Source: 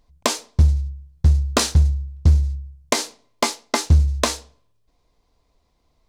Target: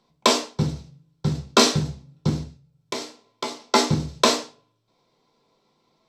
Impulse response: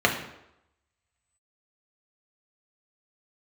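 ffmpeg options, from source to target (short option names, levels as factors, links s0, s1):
-filter_complex "[0:a]asettb=1/sr,asplit=3[s0][s1][s2];[s0]atrim=end=2.434[s3];[s1]atrim=start=2.43:end=3.6,asetpts=PTS-STARTPTS,afade=t=in:d=0.004:c=qsin,afade=t=out:st=1.166:d=0.004:c=qsin,acompressor=threshold=0.0158:ratio=2.5[s4];[s2]atrim=start=3.596[s5];[s3][s4]acrossfade=d=0.004:c1=hsin:c2=qsin[s6];[s6][s5]acrossfade=d=0.004:c1=qsin:c2=hsin[s7];[1:a]atrim=start_sample=2205,afade=t=out:st=0.39:d=0.01,atrim=end_sample=17640,asetrate=83790,aresample=44100[s8];[s7][s8]afir=irnorm=-1:irlink=0,volume=0.422"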